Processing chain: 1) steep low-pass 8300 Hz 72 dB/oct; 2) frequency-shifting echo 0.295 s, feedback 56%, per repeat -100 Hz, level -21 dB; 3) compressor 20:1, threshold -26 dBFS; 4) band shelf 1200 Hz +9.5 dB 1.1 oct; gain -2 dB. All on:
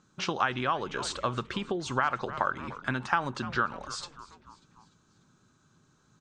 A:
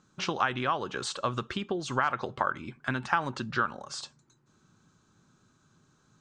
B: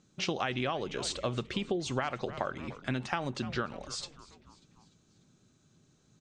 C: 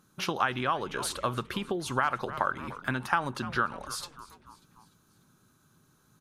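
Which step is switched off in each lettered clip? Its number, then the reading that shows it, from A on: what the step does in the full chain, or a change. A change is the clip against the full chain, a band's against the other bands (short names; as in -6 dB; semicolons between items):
2, momentary loudness spread change -2 LU; 4, 1 kHz band -7.5 dB; 1, 8 kHz band +2.5 dB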